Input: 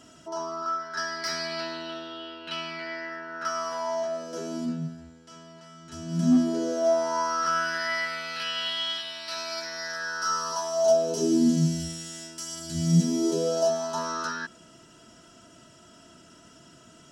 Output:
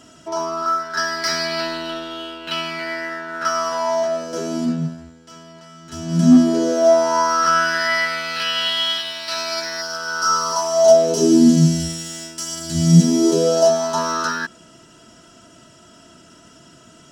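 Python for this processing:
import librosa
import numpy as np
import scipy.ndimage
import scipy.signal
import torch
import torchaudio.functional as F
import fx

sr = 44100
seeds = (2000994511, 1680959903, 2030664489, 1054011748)

p1 = fx.spec_repair(x, sr, seeds[0], start_s=9.84, length_s=0.92, low_hz=1600.0, high_hz=4200.0, source='after')
p2 = np.sign(p1) * np.maximum(np.abs(p1) - 10.0 ** (-44.0 / 20.0), 0.0)
p3 = p1 + F.gain(torch.from_numpy(p2), -3.5).numpy()
y = F.gain(torch.from_numpy(p3), 5.5).numpy()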